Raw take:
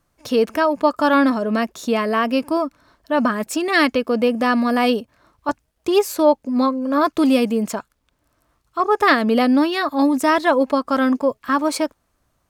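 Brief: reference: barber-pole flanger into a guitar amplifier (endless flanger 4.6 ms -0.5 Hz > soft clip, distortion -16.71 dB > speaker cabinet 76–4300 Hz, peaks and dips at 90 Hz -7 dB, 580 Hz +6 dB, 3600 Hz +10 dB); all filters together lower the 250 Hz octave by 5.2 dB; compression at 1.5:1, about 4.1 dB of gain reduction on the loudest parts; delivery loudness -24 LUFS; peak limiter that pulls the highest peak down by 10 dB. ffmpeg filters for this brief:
-filter_complex "[0:a]equalizer=f=250:t=o:g=-6,acompressor=threshold=-22dB:ratio=1.5,alimiter=limit=-17dB:level=0:latency=1,asplit=2[a][b];[b]adelay=4.6,afreqshift=-0.5[c];[a][c]amix=inputs=2:normalize=1,asoftclip=threshold=-23dB,highpass=76,equalizer=f=90:t=q:w=4:g=-7,equalizer=f=580:t=q:w=4:g=6,equalizer=f=3.6k:t=q:w=4:g=10,lowpass=f=4.3k:w=0.5412,lowpass=f=4.3k:w=1.3066,volume=6dB"

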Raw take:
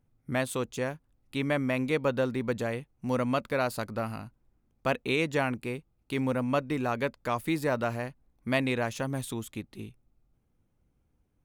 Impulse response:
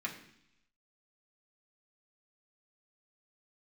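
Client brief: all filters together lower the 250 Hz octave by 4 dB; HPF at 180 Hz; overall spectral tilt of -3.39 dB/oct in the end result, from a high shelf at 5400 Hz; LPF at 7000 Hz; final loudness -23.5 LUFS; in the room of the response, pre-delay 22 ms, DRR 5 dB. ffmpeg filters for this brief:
-filter_complex "[0:a]highpass=180,lowpass=7k,equalizer=f=250:t=o:g=-3.5,highshelf=f=5.4k:g=3,asplit=2[a][b];[1:a]atrim=start_sample=2205,adelay=22[c];[b][c]afir=irnorm=-1:irlink=0,volume=-7.5dB[d];[a][d]amix=inputs=2:normalize=0,volume=8dB"

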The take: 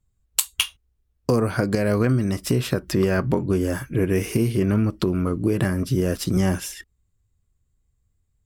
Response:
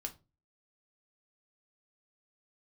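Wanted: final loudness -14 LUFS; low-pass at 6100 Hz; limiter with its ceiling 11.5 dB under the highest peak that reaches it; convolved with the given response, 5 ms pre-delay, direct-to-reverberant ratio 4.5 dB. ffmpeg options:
-filter_complex "[0:a]lowpass=6.1k,alimiter=limit=-16.5dB:level=0:latency=1,asplit=2[a][b];[1:a]atrim=start_sample=2205,adelay=5[c];[b][c]afir=irnorm=-1:irlink=0,volume=-2.5dB[d];[a][d]amix=inputs=2:normalize=0,volume=11dB"

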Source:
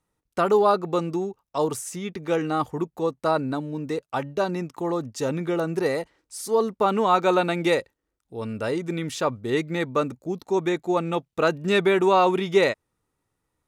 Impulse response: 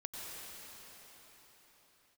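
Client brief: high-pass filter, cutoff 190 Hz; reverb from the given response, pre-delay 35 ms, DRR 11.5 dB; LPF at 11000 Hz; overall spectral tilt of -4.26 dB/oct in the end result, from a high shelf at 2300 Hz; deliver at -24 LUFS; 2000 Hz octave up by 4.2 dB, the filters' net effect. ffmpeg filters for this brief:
-filter_complex "[0:a]highpass=190,lowpass=11k,equalizer=f=2k:t=o:g=3.5,highshelf=f=2.3k:g=3.5,asplit=2[a][b];[1:a]atrim=start_sample=2205,adelay=35[c];[b][c]afir=irnorm=-1:irlink=0,volume=-11.5dB[d];[a][d]amix=inputs=2:normalize=0"

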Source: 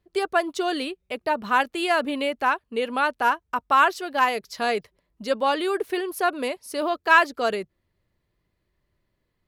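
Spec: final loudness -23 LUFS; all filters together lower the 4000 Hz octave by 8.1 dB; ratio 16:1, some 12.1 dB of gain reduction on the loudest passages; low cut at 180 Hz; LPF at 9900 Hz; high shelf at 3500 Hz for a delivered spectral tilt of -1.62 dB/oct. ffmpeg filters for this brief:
-af "highpass=180,lowpass=9.9k,highshelf=f=3.5k:g=-7.5,equalizer=f=4k:t=o:g=-7,acompressor=threshold=-25dB:ratio=16,volume=8.5dB"

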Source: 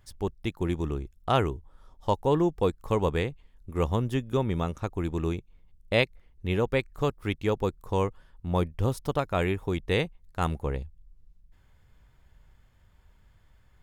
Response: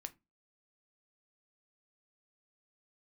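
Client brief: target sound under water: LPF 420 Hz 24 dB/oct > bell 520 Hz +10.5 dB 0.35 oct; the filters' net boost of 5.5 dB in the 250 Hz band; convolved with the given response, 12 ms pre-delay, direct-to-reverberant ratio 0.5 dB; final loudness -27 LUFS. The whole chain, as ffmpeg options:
-filter_complex "[0:a]equalizer=f=250:t=o:g=7.5,asplit=2[a][b];[1:a]atrim=start_sample=2205,adelay=12[c];[b][c]afir=irnorm=-1:irlink=0,volume=4dB[d];[a][d]amix=inputs=2:normalize=0,lowpass=f=420:w=0.5412,lowpass=f=420:w=1.3066,equalizer=f=520:t=o:w=0.35:g=10.5,volume=-3dB"

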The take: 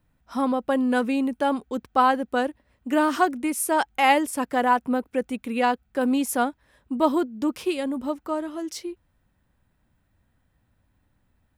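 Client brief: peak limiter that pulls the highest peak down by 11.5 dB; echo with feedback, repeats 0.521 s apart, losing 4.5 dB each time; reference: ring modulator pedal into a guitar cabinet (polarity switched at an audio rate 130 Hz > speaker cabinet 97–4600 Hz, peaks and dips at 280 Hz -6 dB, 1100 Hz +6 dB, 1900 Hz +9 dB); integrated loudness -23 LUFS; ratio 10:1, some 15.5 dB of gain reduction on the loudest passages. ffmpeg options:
-af "acompressor=threshold=-30dB:ratio=10,alimiter=level_in=6.5dB:limit=-24dB:level=0:latency=1,volume=-6.5dB,aecho=1:1:521|1042|1563|2084|2605|3126|3647|4168|4689:0.596|0.357|0.214|0.129|0.0772|0.0463|0.0278|0.0167|0.01,aeval=exprs='val(0)*sgn(sin(2*PI*130*n/s))':c=same,highpass=97,equalizer=f=280:t=q:w=4:g=-6,equalizer=f=1.1k:t=q:w=4:g=6,equalizer=f=1.9k:t=q:w=4:g=9,lowpass=f=4.6k:w=0.5412,lowpass=f=4.6k:w=1.3066,volume=14dB"

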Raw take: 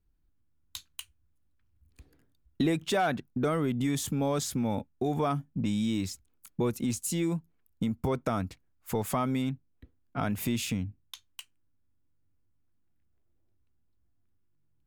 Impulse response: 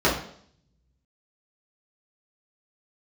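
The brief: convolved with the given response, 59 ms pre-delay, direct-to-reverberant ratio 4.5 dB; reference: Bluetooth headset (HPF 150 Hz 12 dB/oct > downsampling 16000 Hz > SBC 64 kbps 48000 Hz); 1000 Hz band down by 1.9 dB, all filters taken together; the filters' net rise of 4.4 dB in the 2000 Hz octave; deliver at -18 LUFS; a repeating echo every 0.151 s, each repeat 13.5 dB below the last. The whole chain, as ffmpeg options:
-filter_complex "[0:a]equalizer=f=1k:t=o:g=-5,equalizer=f=2k:t=o:g=7.5,aecho=1:1:151|302:0.211|0.0444,asplit=2[a][b];[1:a]atrim=start_sample=2205,adelay=59[c];[b][c]afir=irnorm=-1:irlink=0,volume=-23dB[d];[a][d]amix=inputs=2:normalize=0,highpass=150,aresample=16000,aresample=44100,volume=11.5dB" -ar 48000 -c:a sbc -b:a 64k

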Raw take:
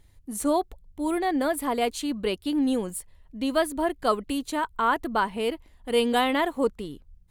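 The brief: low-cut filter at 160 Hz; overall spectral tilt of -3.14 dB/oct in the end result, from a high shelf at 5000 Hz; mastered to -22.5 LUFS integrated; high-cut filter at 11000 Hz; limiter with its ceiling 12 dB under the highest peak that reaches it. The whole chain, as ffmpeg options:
-af "highpass=160,lowpass=11k,highshelf=f=5k:g=-8,volume=9dB,alimiter=limit=-13dB:level=0:latency=1"

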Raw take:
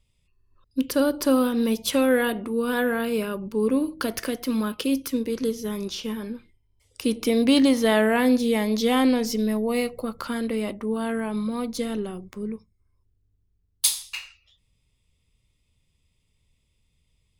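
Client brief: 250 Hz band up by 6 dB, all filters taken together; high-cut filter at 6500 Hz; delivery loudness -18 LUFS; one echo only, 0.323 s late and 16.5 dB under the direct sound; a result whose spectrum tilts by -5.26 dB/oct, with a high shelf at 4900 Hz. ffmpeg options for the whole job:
-af "lowpass=6.5k,equalizer=f=250:t=o:g=6.5,highshelf=f=4.9k:g=-8,aecho=1:1:323:0.15,volume=2dB"

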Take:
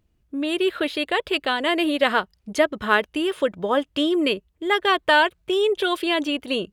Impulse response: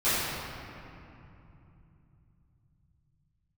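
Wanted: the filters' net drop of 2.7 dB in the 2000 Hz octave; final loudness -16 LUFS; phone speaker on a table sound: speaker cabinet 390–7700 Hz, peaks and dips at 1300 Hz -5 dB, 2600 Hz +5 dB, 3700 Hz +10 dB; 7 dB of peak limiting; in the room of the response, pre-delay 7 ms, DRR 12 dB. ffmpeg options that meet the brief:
-filter_complex "[0:a]equalizer=f=2k:t=o:g=-5,alimiter=limit=-13dB:level=0:latency=1,asplit=2[a][b];[1:a]atrim=start_sample=2205,adelay=7[c];[b][c]afir=irnorm=-1:irlink=0,volume=-27dB[d];[a][d]amix=inputs=2:normalize=0,highpass=f=390:w=0.5412,highpass=f=390:w=1.3066,equalizer=f=1.3k:t=q:w=4:g=-5,equalizer=f=2.6k:t=q:w=4:g=5,equalizer=f=3.7k:t=q:w=4:g=10,lowpass=f=7.7k:w=0.5412,lowpass=f=7.7k:w=1.3066,volume=7.5dB"

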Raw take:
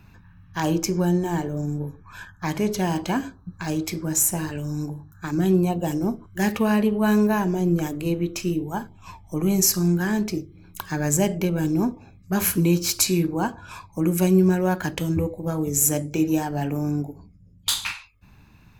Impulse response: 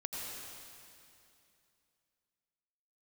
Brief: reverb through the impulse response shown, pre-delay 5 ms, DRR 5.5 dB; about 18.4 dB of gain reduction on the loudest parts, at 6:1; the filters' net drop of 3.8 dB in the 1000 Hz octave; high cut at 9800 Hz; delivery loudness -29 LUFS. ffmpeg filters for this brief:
-filter_complex "[0:a]lowpass=9.8k,equalizer=f=1k:t=o:g=-5,acompressor=threshold=-35dB:ratio=6,asplit=2[a][b];[1:a]atrim=start_sample=2205,adelay=5[c];[b][c]afir=irnorm=-1:irlink=0,volume=-7dB[d];[a][d]amix=inputs=2:normalize=0,volume=8dB"

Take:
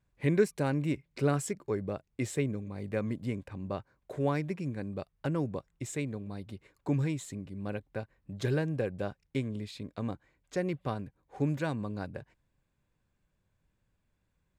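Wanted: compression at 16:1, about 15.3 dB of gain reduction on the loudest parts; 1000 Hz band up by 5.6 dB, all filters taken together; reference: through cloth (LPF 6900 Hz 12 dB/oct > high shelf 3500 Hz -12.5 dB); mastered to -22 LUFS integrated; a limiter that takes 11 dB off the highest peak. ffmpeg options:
-af "equalizer=f=1k:t=o:g=8.5,acompressor=threshold=-33dB:ratio=16,alimiter=level_in=9dB:limit=-24dB:level=0:latency=1,volume=-9dB,lowpass=6.9k,highshelf=f=3.5k:g=-12.5,volume=22dB"

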